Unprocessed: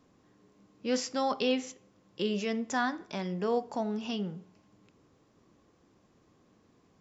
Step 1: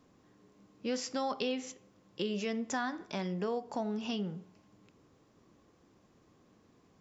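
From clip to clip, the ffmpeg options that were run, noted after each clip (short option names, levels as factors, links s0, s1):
-af "acompressor=threshold=0.0282:ratio=4"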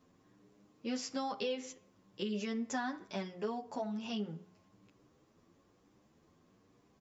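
-filter_complex "[0:a]asplit=2[s0][s1];[s1]adelay=9,afreqshift=1.1[s2];[s0][s2]amix=inputs=2:normalize=1"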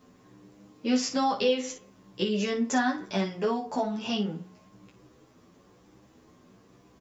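-af "aecho=1:1:16|56:0.596|0.335,volume=2.82"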